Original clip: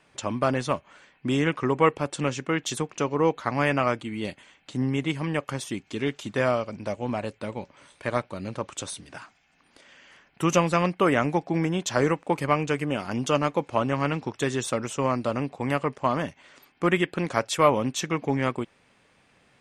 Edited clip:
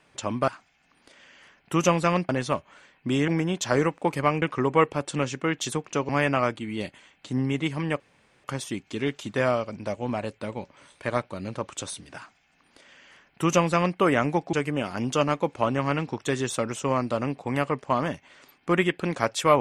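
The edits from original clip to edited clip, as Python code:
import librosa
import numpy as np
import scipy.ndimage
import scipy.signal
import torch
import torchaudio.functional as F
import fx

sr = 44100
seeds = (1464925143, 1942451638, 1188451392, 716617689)

y = fx.edit(x, sr, fx.cut(start_s=3.14, length_s=0.39),
    fx.insert_room_tone(at_s=5.44, length_s=0.44),
    fx.duplicate(start_s=9.17, length_s=1.81, to_s=0.48),
    fx.move(start_s=11.53, length_s=1.14, to_s=1.47), tone=tone)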